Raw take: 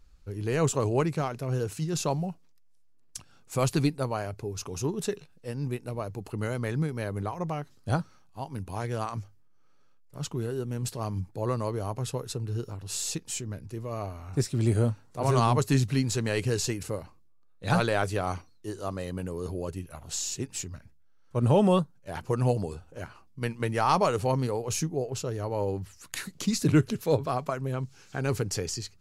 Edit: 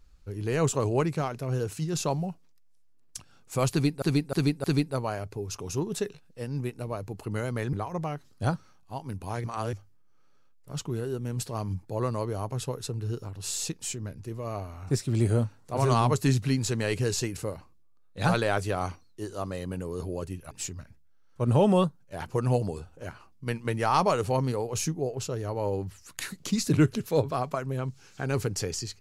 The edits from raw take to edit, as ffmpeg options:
-filter_complex "[0:a]asplit=8[a][b][c][d][e][f][g][h];[a]atrim=end=4.022[i];[b]atrim=start=3.708:end=4.022[j];[c]atrim=start=3.708:end=4.022[k];[d]atrim=start=3.708:end=6.802[l];[e]atrim=start=7.188:end=8.902[m];[f]atrim=start=8.898:end=9.192,asetpts=PTS-STARTPTS,areverse[n];[g]atrim=start=9.188:end=19.972[o];[h]atrim=start=20.458[p];[i][j]acrossfade=d=0.004:c1=hsin:c2=hsin[q];[q][k]acrossfade=d=0.004:c1=hsin:c2=hsin[r];[r][l]acrossfade=d=0.004:c1=hsin:c2=hsin[s];[s][m]acrossfade=d=0.004:c1=hsin:c2=hsin[t];[t][n]acrossfade=d=0.004:c1=hsin:c2=hsin[u];[u][o]acrossfade=d=0.004:c1=hsin:c2=hsin[v];[v][p]acrossfade=d=0.004:c1=hsin:c2=hsin"

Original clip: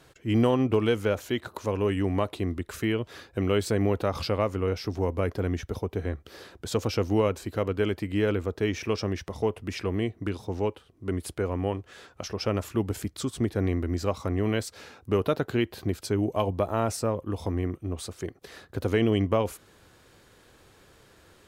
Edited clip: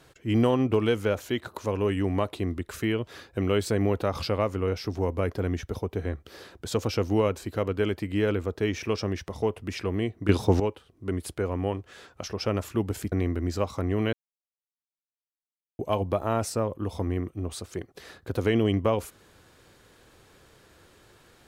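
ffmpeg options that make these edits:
-filter_complex "[0:a]asplit=6[a][b][c][d][e][f];[a]atrim=end=10.292[g];[b]atrim=start=10.288:end=10.602,asetpts=PTS-STARTPTS,volume=11.5dB[h];[c]atrim=start=10.598:end=13.122[i];[d]atrim=start=13.588:end=14.6,asetpts=PTS-STARTPTS,afade=t=out:st=1.008:d=0.004:c=hsin[j];[e]atrim=start=14.6:end=16.26,asetpts=PTS-STARTPTS,volume=0[k];[f]atrim=start=16.26,asetpts=PTS-STARTPTS,afade=t=in:d=0.004:c=hsin[l];[g][h]acrossfade=d=0.004:c1=hsin:c2=hsin[m];[m][i]acrossfade=d=0.004:c1=hsin:c2=hsin[n];[j][k][l]concat=n=3:v=0:a=1[o];[n][o]acrossfade=d=0.004:c1=hsin:c2=hsin"

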